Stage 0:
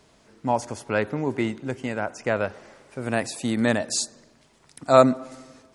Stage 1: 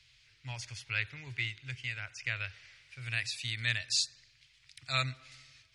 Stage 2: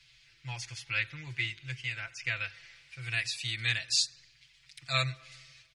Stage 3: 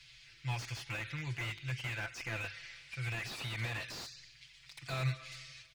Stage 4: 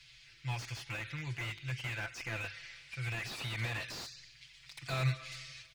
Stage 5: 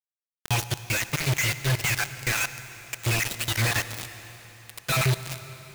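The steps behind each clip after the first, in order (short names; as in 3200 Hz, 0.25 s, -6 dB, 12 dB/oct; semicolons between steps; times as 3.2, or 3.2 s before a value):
EQ curve 130 Hz 0 dB, 190 Hz -30 dB, 310 Hz -25 dB, 560 Hz -25 dB, 950 Hz -20 dB, 2300 Hz +9 dB, 4600 Hz +7 dB, 7800 Hz -5 dB, 13000 Hz -8 dB; gain -6 dB
comb 5.9 ms, depth 88%
limiter -26.5 dBFS, peak gain reduction 11 dB; slew limiter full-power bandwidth 18 Hz; gain +3.5 dB
vocal rider within 4 dB 2 s
random spectral dropouts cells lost 36%; companded quantiser 2-bit; reverb RT60 4.0 s, pre-delay 52 ms, DRR 12 dB; gain +5.5 dB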